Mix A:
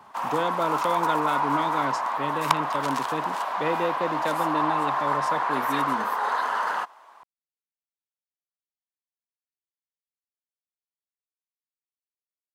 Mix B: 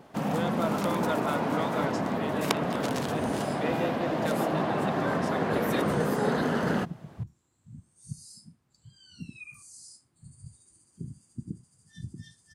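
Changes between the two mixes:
speech -5.0 dB; first sound: remove resonant high-pass 1000 Hz, resonance Q 4.7; second sound: unmuted

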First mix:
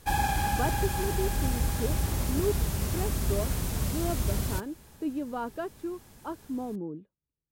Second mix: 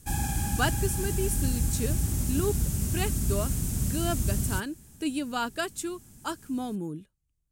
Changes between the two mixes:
speech: remove band-pass 230 Hz, Q 1.3; master: add ten-band EQ 125 Hz +3 dB, 250 Hz +4 dB, 500 Hz -9 dB, 1000 Hz -9 dB, 2000 Hz -5 dB, 4000 Hz -7 dB, 8000 Hz +7 dB

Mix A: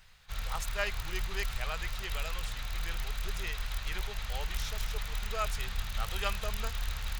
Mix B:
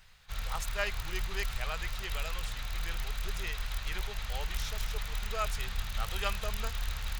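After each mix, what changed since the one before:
none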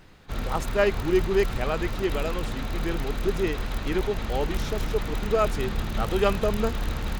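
master: remove passive tone stack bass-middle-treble 10-0-10

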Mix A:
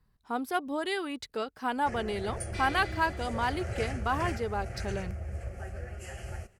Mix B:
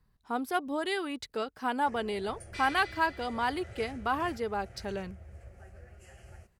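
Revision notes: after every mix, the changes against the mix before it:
first sound -11.5 dB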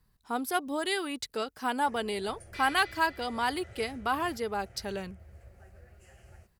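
speech: add high shelf 4400 Hz +10.5 dB; first sound -3.0 dB; second sound: add air absorption 88 m

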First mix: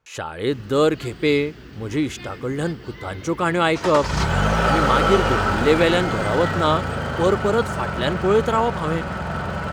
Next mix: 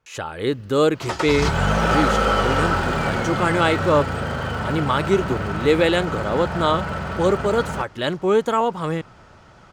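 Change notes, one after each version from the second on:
first sound -9.0 dB; second sound: entry -2.75 s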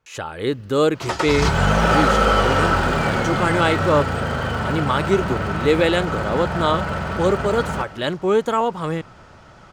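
reverb: on, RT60 0.55 s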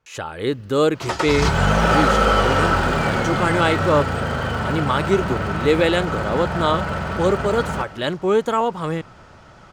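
none

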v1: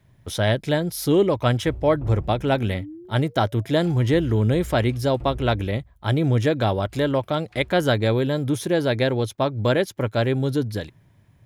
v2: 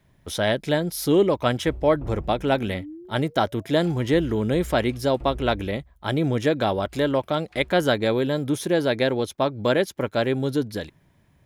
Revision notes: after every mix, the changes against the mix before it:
master: add bell 110 Hz -10.5 dB 0.53 oct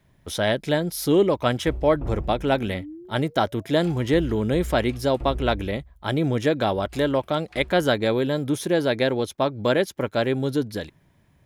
second sound +4.5 dB

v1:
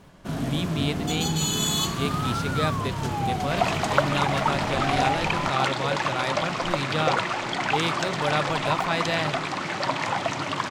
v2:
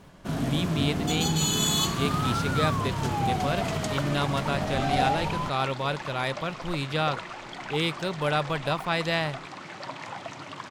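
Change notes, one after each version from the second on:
second sound -11.5 dB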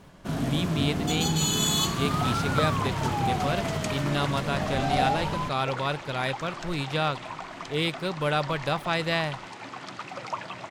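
second sound: entry -1.40 s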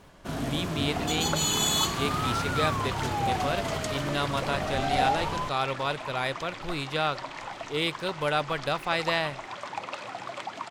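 second sound: entry -1.25 s; master: add bell 170 Hz -6.5 dB 1.2 oct

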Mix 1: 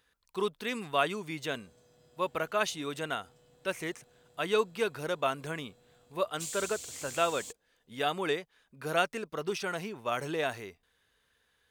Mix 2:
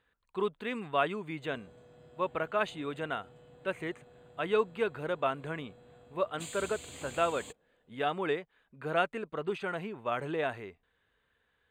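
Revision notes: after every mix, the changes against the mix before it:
background +7.5 dB; master: add running mean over 8 samples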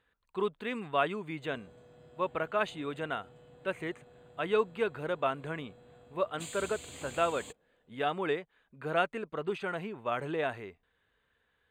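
none

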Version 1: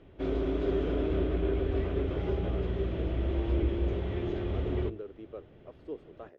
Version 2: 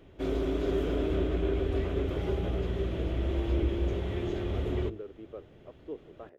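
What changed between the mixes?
speech: add air absorption 270 m; master: remove air absorption 160 m

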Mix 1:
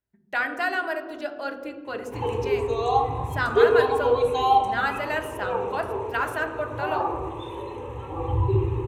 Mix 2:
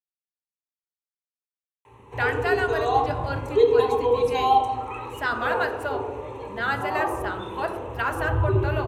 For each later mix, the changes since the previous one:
speech: entry +1.85 s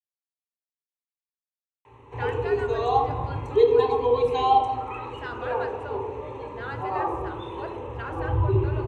speech -10.5 dB; master: add air absorption 79 m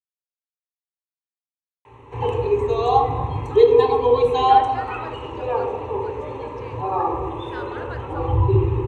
speech: entry +2.30 s; background +5.0 dB

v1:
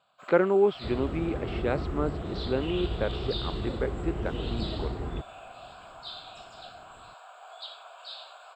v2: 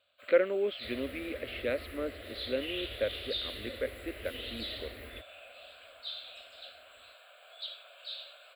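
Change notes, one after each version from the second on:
second sound: add tilt +4 dB/oct; master: add EQ curve 100 Hz 0 dB, 150 Hz -30 dB, 240 Hz -5 dB, 380 Hz -11 dB, 560 Hz +2 dB, 840 Hz -22 dB, 2000 Hz +3 dB, 4100 Hz +1 dB, 6200 Hz -21 dB, 10000 Hz +11 dB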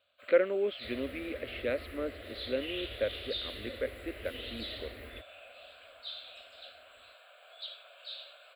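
master: add high shelf 4700 Hz -5 dB

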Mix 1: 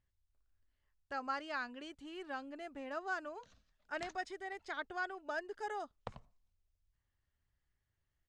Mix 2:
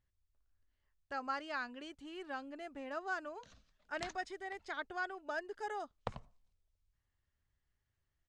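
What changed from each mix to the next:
background +5.0 dB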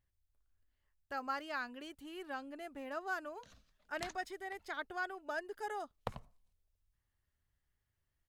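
master: remove LPF 7900 Hz 24 dB/oct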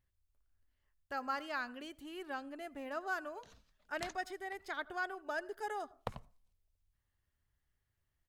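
speech: send on

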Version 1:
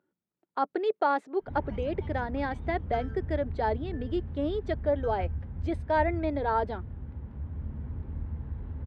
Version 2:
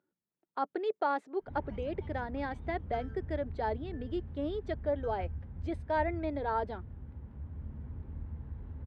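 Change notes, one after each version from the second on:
speech -5.0 dB; background -6.0 dB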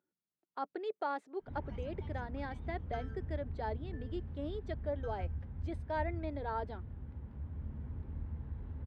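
speech -6.0 dB; master: add high shelf 4300 Hz +5 dB

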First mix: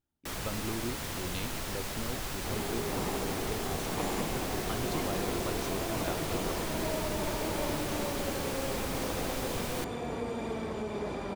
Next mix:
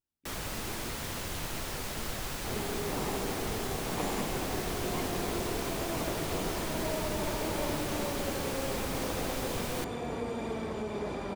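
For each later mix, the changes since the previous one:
speech -10.5 dB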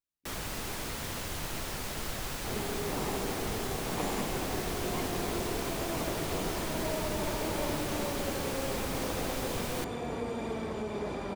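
speech -8.0 dB

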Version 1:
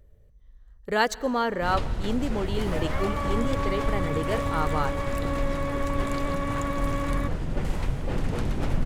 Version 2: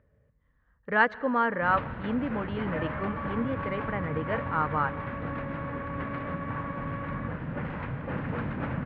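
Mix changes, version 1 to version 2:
second sound -8.0 dB; master: add speaker cabinet 120–2400 Hz, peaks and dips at 380 Hz -9 dB, 720 Hz -4 dB, 1100 Hz +3 dB, 1600 Hz +5 dB

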